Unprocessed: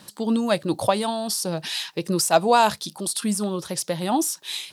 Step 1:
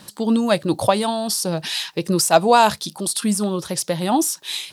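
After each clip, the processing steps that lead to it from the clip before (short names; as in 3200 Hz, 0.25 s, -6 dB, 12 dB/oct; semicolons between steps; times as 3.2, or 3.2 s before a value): low shelf 62 Hz +8 dB; gain +3.5 dB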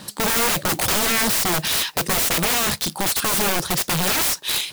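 limiter -10 dBFS, peak gain reduction 8.5 dB; modulation noise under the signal 17 dB; wrapped overs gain 20.5 dB; gain +5.5 dB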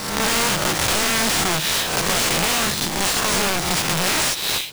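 spectral swells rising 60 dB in 0.99 s; sample-rate reducer 16000 Hz, jitter 0%; gain -2.5 dB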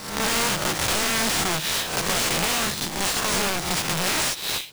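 upward expander 1.5:1, over -31 dBFS; gain -3 dB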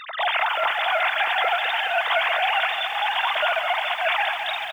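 sine-wave speech; echo 86 ms -15 dB; lo-fi delay 0.211 s, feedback 80%, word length 8-bit, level -8.5 dB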